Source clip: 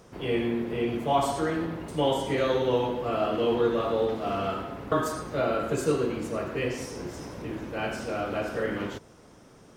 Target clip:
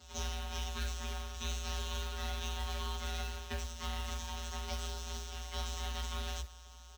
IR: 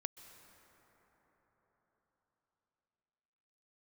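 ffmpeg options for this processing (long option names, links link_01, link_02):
-filter_complex "[0:a]aderivative,acompressor=threshold=-48dB:ratio=10,aresample=16000,aeval=exprs='abs(val(0))':channel_layout=same,aresample=44100,afftfilt=real='hypot(re,im)*cos(PI*b)':imag='0':win_size=1024:overlap=0.75,afreqshift=59,acrusher=bits=4:mode=log:mix=0:aa=0.000001,atempo=1.4,asplit=2[link_01][link_02];[link_02]adelay=12,volume=-3dB[link_03];[link_01][link_03]amix=inputs=2:normalize=0,asplit=2[link_04][link_05];[link_05]adelay=1633,volume=-16dB,highshelf=frequency=4000:gain=-36.7[link_06];[link_04][link_06]amix=inputs=2:normalize=0,volume=15dB"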